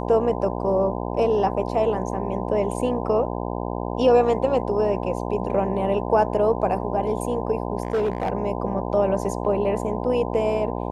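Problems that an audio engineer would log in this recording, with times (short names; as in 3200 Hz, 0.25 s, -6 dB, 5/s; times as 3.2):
buzz 60 Hz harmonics 17 -28 dBFS
7.83–8.3 clipped -18.5 dBFS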